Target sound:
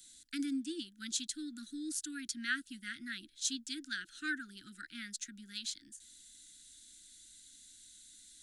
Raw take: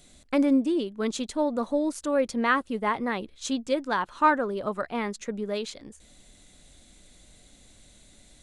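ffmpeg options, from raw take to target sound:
ffmpeg -i in.wav -filter_complex "[0:a]asuperstop=centerf=690:order=20:qfactor=0.62,acrossover=split=380 2200:gain=0.158 1 0.158[link_01][link_02][link_03];[link_01][link_02][link_03]amix=inputs=3:normalize=0,aexciter=amount=10.3:drive=5.1:freq=3400,volume=-5dB" out.wav

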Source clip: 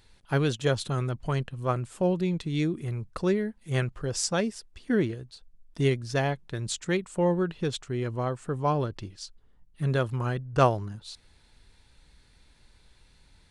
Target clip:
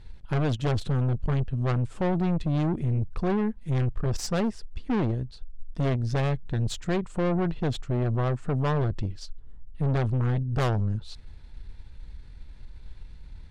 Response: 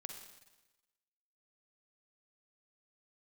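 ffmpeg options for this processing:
-af "aemphasis=mode=reproduction:type=bsi,aeval=exprs='(tanh(22.4*val(0)+0.5)-tanh(0.5))/22.4':channel_layout=same,volume=4.5dB"

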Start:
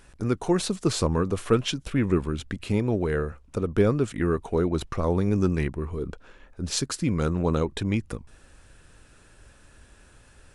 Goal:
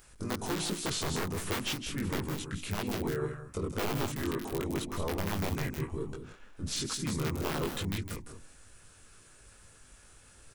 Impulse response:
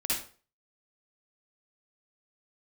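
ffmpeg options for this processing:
-filter_complex "[0:a]aeval=exprs='(mod(5.01*val(0)+1,2)-1)/5.01':channel_layout=same,asplit=2[link_01][link_02];[link_02]adelay=20,volume=-2.5dB[link_03];[link_01][link_03]amix=inputs=2:normalize=0,alimiter=limit=-18.5dB:level=0:latency=1:release=13,bandreject=frequency=60:width_type=h:width=6,bandreject=frequency=120:width_type=h:width=6,bandreject=frequency=180:width_type=h:width=6,bandreject=frequency=240:width_type=h:width=6,bandreject=frequency=300:width_type=h:width=6,bandreject=frequency=360:width_type=h:width=6,aecho=1:1:159|187:0.316|0.299,asplit=2[link_04][link_05];[link_05]asetrate=37084,aresample=44100,atempo=1.18921,volume=-3dB[link_06];[link_04][link_06]amix=inputs=2:normalize=0,aemphasis=mode=production:type=50kf,acrossover=split=4600[link_07][link_08];[link_08]acompressor=threshold=-27dB:ratio=4:attack=1:release=60[link_09];[link_07][link_09]amix=inputs=2:normalize=0,volume=-9dB"

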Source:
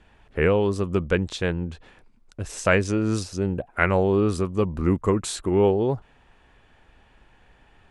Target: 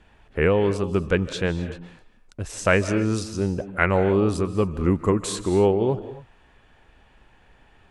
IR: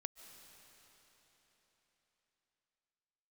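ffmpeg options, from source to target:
-filter_complex "[1:a]atrim=start_sample=2205,afade=type=out:start_time=0.32:duration=0.01,atrim=end_sample=14553,asetrate=41895,aresample=44100[link_01];[0:a][link_01]afir=irnorm=-1:irlink=0,volume=4.5dB"

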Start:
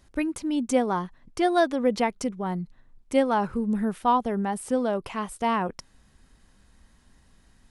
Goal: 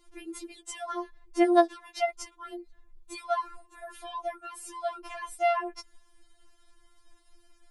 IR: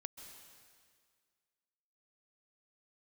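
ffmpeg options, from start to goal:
-filter_complex "[0:a]acrossover=split=430|1200[link_01][link_02][link_03];[link_01]acompressor=threshold=-36dB:ratio=4[link_04];[link_02]acompressor=threshold=-25dB:ratio=4[link_05];[link_03]acompressor=threshold=-33dB:ratio=4[link_06];[link_04][link_05][link_06]amix=inputs=3:normalize=0,afftfilt=real='re*4*eq(mod(b,16),0)':imag='im*4*eq(mod(b,16),0)':win_size=2048:overlap=0.75"

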